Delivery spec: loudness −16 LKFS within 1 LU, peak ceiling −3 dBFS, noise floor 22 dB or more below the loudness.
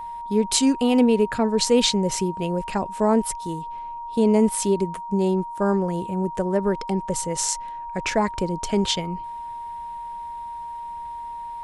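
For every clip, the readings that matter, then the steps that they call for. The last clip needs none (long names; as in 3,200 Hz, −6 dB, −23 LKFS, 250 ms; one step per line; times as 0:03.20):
interfering tone 940 Hz; level of the tone −31 dBFS; integrated loudness −22.5 LKFS; sample peak −6.0 dBFS; target loudness −16.0 LKFS
→ notch filter 940 Hz, Q 30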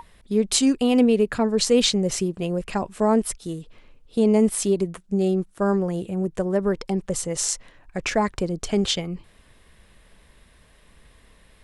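interfering tone none found; integrated loudness −23.0 LKFS; sample peak −5.5 dBFS; target loudness −16.0 LKFS
→ level +7 dB
brickwall limiter −3 dBFS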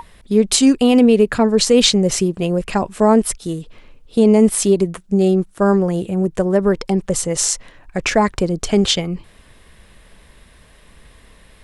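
integrated loudness −16.0 LKFS; sample peak −3.0 dBFS; background noise floor −49 dBFS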